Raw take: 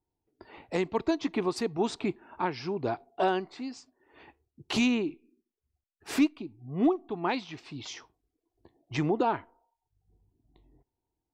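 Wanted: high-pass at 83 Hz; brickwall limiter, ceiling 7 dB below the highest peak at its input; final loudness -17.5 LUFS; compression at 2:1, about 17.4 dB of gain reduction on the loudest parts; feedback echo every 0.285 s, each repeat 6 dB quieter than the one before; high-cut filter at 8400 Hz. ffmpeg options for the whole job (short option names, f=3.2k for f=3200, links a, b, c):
-af "highpass=83,lowpass=8.4k,acompressor=threshold=-53dB:ratio=2,alimiter=level_in=11.5dB:limit=-24dB:level=0:latency=1,volume=-11.5dB,aecho=1:1:285|570|855|1140|1425|1710:0.501|0.251|0.125|0.0626|0.0313|0.0157,volume=30dB"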